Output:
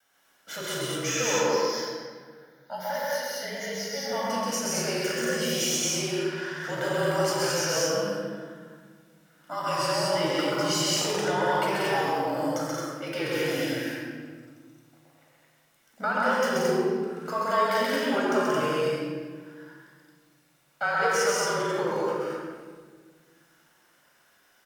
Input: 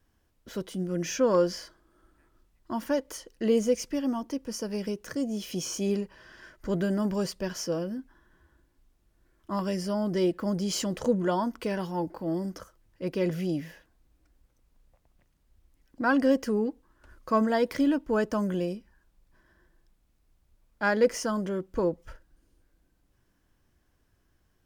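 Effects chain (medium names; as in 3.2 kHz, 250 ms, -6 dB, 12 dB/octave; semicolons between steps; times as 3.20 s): Bessel high-pass 920 Hz, order 2; band-stop 4.6 kHz, Q 14; compression 3:1, threshold -39 dBFS, peak gain reduction 12.5 dB; 1.36–4.12 s: static phaser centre 1.8 kHz, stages 8; frequency shift -38 Hz; wow and flutter 84 cents; loudspeakers at several distances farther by 45 m -2 dB, 62 m -4 dB, 76 m -2 dB; reverberation RT60 1.6 s, pre-delay 14 ms, DRR -2.5 dB; trim +5.5 dB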